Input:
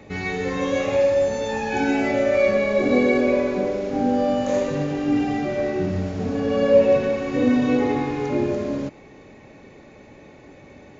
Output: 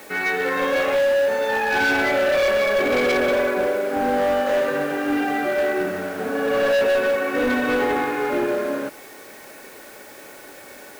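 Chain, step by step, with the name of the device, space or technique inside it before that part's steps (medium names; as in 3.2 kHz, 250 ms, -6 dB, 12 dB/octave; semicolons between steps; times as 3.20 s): drive-through speaker (band-pass 410–3300 Hz; peaking EQ 1.5 kHz +11 dB 0.42 oct; hard clipper -21.5 dBFS, distortion -8 dB; white noise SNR 25 dB); trim +5 dB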